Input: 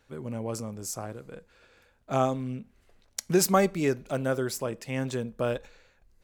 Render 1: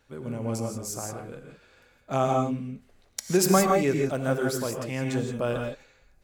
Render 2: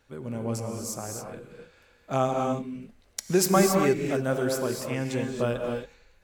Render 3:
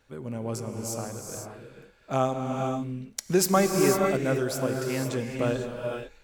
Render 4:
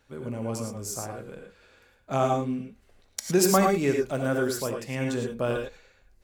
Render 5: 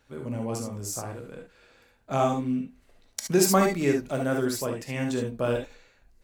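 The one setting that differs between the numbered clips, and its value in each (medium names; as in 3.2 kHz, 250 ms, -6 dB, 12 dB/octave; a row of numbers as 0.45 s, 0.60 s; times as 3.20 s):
gated-style reverb, gate: 190 ms, 300 ms, 530 ms, 130 ms, 90 ms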